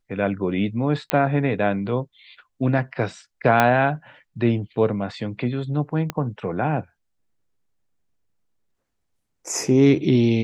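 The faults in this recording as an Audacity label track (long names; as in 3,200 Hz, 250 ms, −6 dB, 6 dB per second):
1.100000	1.100000	click −4 dBFS
3.600000	3.600000	click −4 dBFS
6.100000	6.100000	click −11 dBFS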